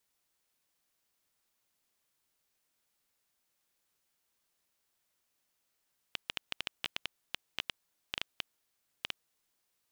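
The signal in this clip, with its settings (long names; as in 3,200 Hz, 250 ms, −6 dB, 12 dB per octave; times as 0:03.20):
Geiger counter clicks 6.8 per second −15 dBFS 3.01 s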